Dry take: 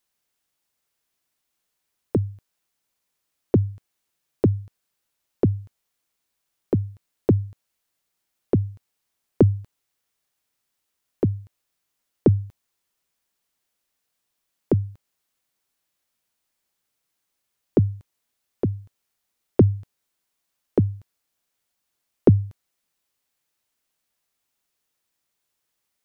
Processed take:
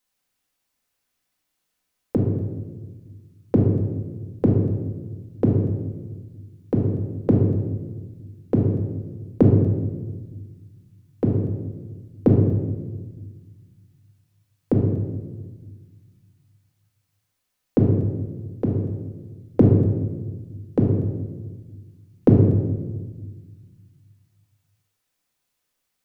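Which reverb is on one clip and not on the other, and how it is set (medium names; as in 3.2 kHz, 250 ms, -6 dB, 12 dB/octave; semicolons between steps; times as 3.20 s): simulated room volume 1100 m³, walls mixed, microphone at 2 m; trim -1.5 dB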